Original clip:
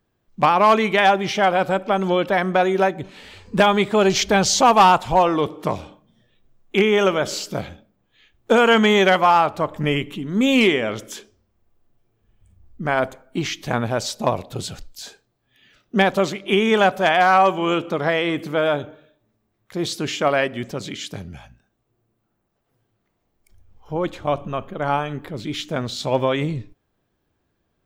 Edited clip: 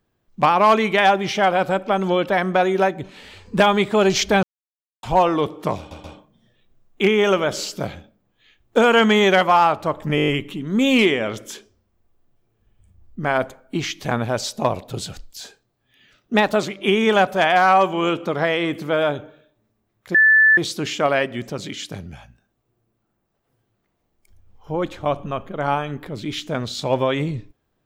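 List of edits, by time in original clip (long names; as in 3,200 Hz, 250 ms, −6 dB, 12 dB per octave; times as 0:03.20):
0:04.43–0:05.03: silence
0:05.78: stutter 0.13 s, 3 plays
0:09.90: stutter 0.02 s, 7 plays
0:15.96–0:16.27: play speed 109%
0:19.79: insert tone 1,750 Hz −9.5 dBFS 0.43 s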